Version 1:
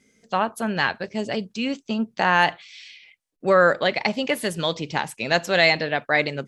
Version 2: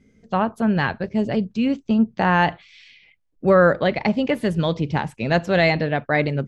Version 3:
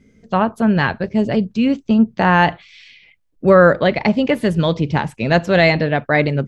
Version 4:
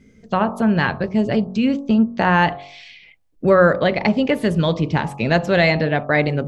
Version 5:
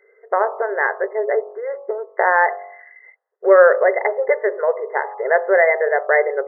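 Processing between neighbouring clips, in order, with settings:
RIAA curve playback
band-stop 780 Hz, Q 24; trim +4.5 dB
de-hum 46.8 Hz, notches 28; in parallel at +1 dB: compression, threshold -21 dBFS, peak gain reduction 14 dB; on the sum: trim -4.5 dB
dynamic bell 1.1 kHz, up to -6 dB, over -30 dBFS, Q 0.98; brick-wall FIR band-pass 380–2100 Hz; trim +6 dB

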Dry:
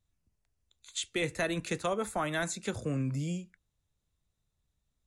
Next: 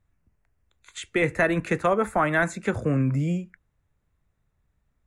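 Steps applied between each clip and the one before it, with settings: resonant high shelf 2.7 kHz -11 dB, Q 1.5; trim +9 dB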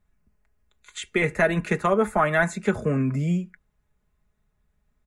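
comb 4.8 ms, depth 60%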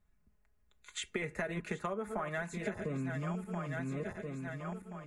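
backward echo that repeats 689 ms, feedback 53%, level -9 dB; compression 12:1, threshold -29 dBFS, peak gain reduction 14.5 dB; trim -4.5 dB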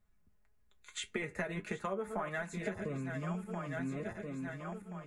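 flange 1.7 Hz, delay 8.7 ms, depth 2.8 ms, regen +53%; trim +3.5 dB

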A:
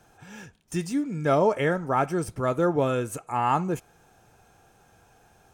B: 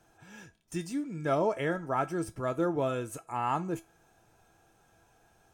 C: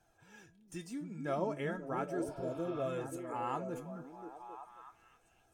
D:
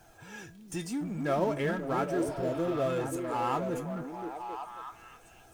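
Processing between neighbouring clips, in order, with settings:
feedback comb 330 Hz, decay 0.2 s, harmonics all, mix 70%; trim +2 dB
flange 0.37 Hz, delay 1.2 ms, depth 4.5 ms, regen +51%; repeats whose band climbs or falls 267 ms, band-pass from 200 Hz, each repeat 0.7 oct, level -1 dB; spectral replace 2.28–2.83 s, 720–5400 Hz both; trim -3.5 dB
companding laws mixed up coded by mu; trim +5 dB

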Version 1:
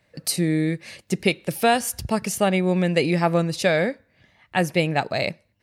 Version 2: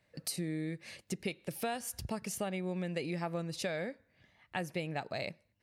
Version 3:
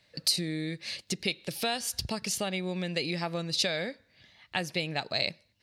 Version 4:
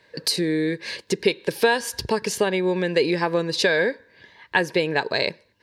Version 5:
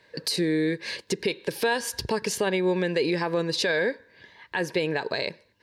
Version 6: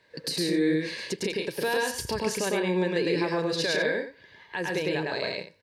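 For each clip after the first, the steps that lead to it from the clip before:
compression 3:1, threshold -27 dBFS, peak gain reduction 10.5 dB; trim -8.5 dB
peaking EQ 4.2 kHz +14 dB 1.3 oct; trim +3 dB
small resonant body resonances 430/960/1600 Hz, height 17 dB, ringing for 20 ms; trim +2 dB
peak limiter -14 dBFS, peak gain reduction 9 dB; trim -1.5 dB
loudspeakers at several distances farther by 36 m -1 dB, 47 m -6 dB, 67 m -12 dB; trim -4.5 dB

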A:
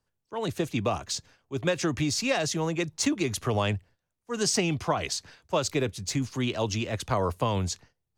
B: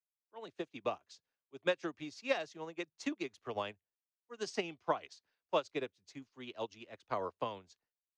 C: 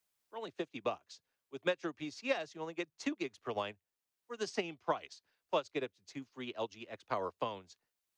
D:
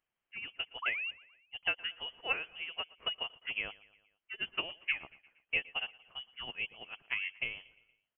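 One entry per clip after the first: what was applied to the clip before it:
three-band isolator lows -15 dB, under 250 Hz, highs -19 dB, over 5.8 kHz; upward expansion 2.5:1, over -40 dBFS; trim -3.5 dB
three bands compressed up and down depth 40%; trim +1 dB
painted sound fall, 0.82–1.11 s, 350–2300 Hz -37 dBFS; feedback delay 117 ms, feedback 55%, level -22 dB; frequency inversion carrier 3.2 kHz

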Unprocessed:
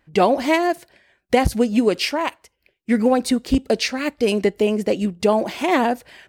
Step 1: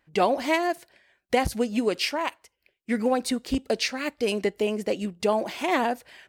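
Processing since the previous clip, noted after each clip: bass shelf 390 Hz -6 dB; trim -4 dB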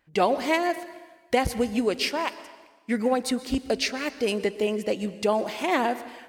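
plate-style reverb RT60 1.3 s, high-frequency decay 0.9×, pre-delay 105 ms, DRR 14.5 dB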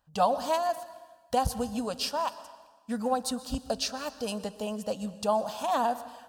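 static phaser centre 880 Hz, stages 4

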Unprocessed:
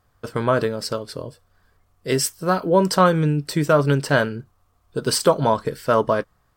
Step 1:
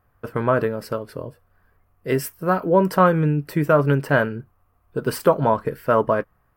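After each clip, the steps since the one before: high-order bell 5.4 kHz -13.5 dB; band-stop 2.2 kHz, Q 29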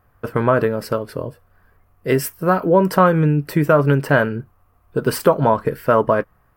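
compression 1.5:1, threshold -20 dBFS, peak gain reduction 4 dB; trim +5.5 dB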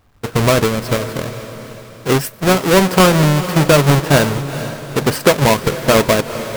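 square wave that keeps the level; echo that smears into a reverb 454 ms, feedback 48%, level -12 dB; trim -1 dB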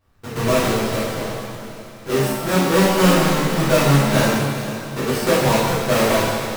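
pitch-shifted reverb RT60 1.2 s, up +7 st, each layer -8 dB, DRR -10 dB; trim -15 dB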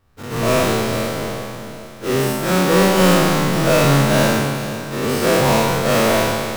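every event in the spectrogram widened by 120 ms; trim -3 dB

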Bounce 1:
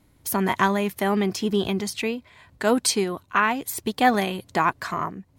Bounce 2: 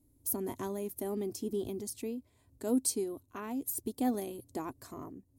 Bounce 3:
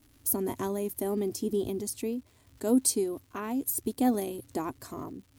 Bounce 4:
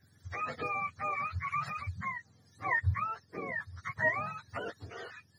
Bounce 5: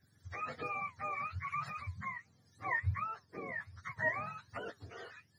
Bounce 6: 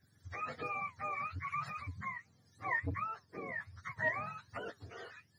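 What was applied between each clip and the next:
FFT filter 120 Hz 0 dB, 180 Hz -13 dB, 260 Hz +4 dB, 1.6 kHz -21 dB, 3 kHz -17 dB, 10 kHz +4 dB; trim -8 dB
crackle 350 per s -56 dBFS; trim +5.5 dB
spectrum inverted on a logarithmic axis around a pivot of 690 Hz; trim -1.5 dB
flange 1.3 Hz, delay 4.3 ms, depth 5.3 ms, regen -83%
transformer saturation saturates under 420 Hz

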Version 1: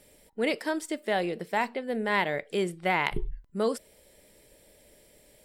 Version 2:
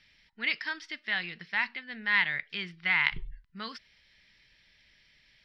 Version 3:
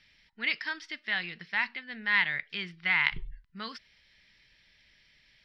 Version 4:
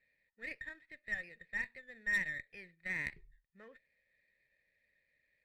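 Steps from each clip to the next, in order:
FFT filter 160 Hz 0 dB, 530 Hz -19 dB, 1 kHz 0 dB, 1.8 kHz +12 dB, 5.4 kHz +8 dB, 7.7 kHz -24 dB, 14 kHz -28 dB; trim -7 dB
no audible change
cascade formant filter e; Chebyshev shaper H 6 -21 dB, 8 -29 dB, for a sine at -23.5 dBFS; sliding maximum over 3 samples

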